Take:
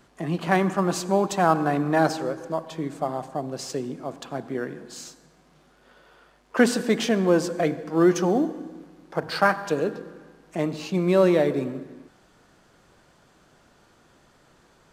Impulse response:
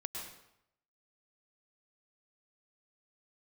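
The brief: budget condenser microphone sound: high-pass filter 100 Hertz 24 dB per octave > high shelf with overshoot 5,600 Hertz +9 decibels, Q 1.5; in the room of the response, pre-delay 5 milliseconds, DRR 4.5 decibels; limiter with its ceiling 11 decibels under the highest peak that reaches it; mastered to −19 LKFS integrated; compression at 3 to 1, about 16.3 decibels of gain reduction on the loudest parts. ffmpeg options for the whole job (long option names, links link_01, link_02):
-filter_complex "[0:a]acompressor=threshold=-36dB:ratio=3,alimiter=level_in=5.5dB:limit=-24dB:level=0:latency=1,volume=-5.5dB,asplit=2[link_01][link_02];[1:a]atrim=start_sample=2205,adelay=5[link_03];[link_02][link_03]afir=irnorm=-1:irlink=0,volume=-4.5dB[link_04];[link_01][link_04]amix=inputs=2:normalize=0,highpass=frequency=100:width=0.5412,highpass=frequency=100:width=1.3066,highshelf=frequency=5600:width_type=q:width=1.5:gain=9,volume=18.5dB"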